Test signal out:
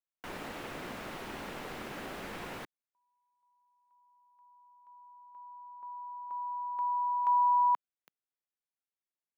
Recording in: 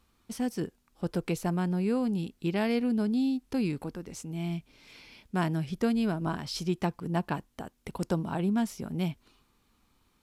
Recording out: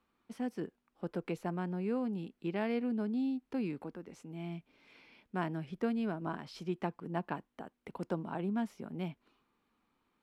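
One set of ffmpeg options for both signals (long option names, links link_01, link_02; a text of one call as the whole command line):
ffmpeg -i in.wav -filter_complex "[0:a]acrossover=split=170 3000:gain=0.2 1 0.2[link_01][link_02][link_03];[link_01][link_02][link_03]amix=inputs=3:normalize=0,volume=-5dB" out.wav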